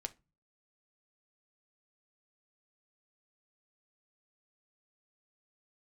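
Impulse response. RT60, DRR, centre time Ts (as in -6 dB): 0.25 s, 8.5 dB, 3 ms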